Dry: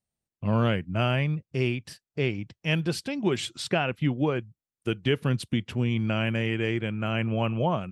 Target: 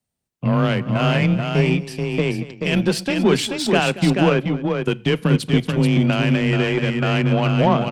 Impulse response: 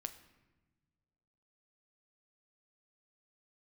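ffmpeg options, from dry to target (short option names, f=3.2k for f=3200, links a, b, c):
-filter_complex "[0:a]alimiter=limit=-18dB:level=0:latency=1:release=21,afreqshift=22,aeval=exprs='0.178*(cos(1*acos(clip(val(0)/0.178,-1,1)))-cos(1*PI/2))+0.01*(cos(7*acos(clip(val(0)/0.178,-1,1)))-cos(7*PI/2))':c=same,aecho=1:1:230|433:0.15|0.562,asplit=2[a][b];[1:a]atrim=start_sample=2205,afade=t=out:st=0.17:d=0.01,atrim=end_sample=7938[c];[b][c]afir=irnorm=-1:irlink=0,volume=-5.5dB[d];[a][d]amix=inputs=2:normalize=0,volume=8dB"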